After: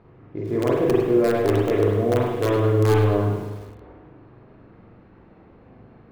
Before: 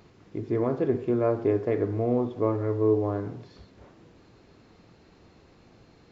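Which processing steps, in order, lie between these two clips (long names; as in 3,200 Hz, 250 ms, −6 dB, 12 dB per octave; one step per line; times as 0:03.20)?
low-pass that shuts in the quiet parts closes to 1,500 Hz, open at −25 dBFS
in parallel at −5 dB: wrap-around overflow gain 15 dB
on the sum: spring reverb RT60 1.2 s, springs 39/47 ms, chirp 65 ms, DRR −3.5 dB
feedback echo at a low word length 103 ms, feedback 35%, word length 6 bits, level −14 dB
level −2.5 dB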